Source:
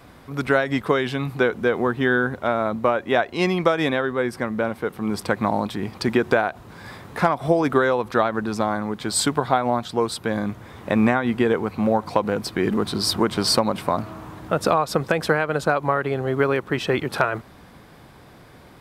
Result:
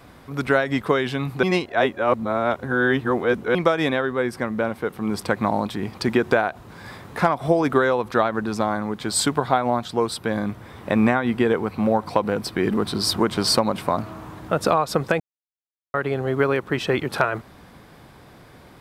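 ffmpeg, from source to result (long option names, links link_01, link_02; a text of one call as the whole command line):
ffmpeg -i in.wav -filter_complex "[0:a]asettb=1/sr,asplit=3[link_01][link_02][link_03];[link_01]atrim=end=10.084[link_04];[link_02]atrim=start=10.08:end=13.01,asetpts=PTS-STARTPTS,afade=type=in:duration=0.004:curve=qsin,afade=type=out:start_time=2.926:duration=0.004:curve=qsin,bandreject=frequency=6700:width=12[link_05];[link_03]atrim=start=13.006[link_06];[link_04][link_05]acrossfade=duration=0.004:curve1=hsin:curve2=qsin[link_07];[link_07][link_06]acrossfade=duration=0.004:curve1=qsin:curve2=hsin,asplit=5[link_08][link_09][link_10][link_11][link_12];[link_08]atrim=end=1.432[link_13];[link_09]atrim=start=1.428:end=3.552,asetpts=PTS-STARTPTS,areverse[link_14];[link_10]atrim=start=3.548:end=15.2,asetpts=PTS-STARTPTS,afade=type=out:start_time=11.648:duration=0.004:curve=hsin[link_15];[link_11]atrim=start=15.2:end=15.94,asetpts=PTS-STARTPTS,volume=0[link_16];[link_12]atrim=start=15.94,asetpts=PTS-STARTPTS,afade=type=in:duration=0.004:curve=hsin[link_17];[link_13][link_14]acrossfade=duration=0.004:curve1=hsin:curve2=hsin[link_18];[link_15][link_16][link_17]concat=n=3:v=0:a=1[link_19];[link_18][link_19]acrossfade=duration=0.004:curve1=hsin:curve2=hsin" out.wav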